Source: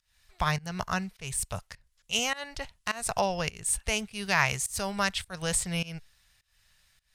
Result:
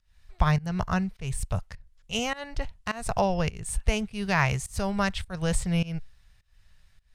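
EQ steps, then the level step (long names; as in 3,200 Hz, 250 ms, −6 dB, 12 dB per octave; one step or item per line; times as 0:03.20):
spectral tilt −2.5 dB per octave
+1.0 dB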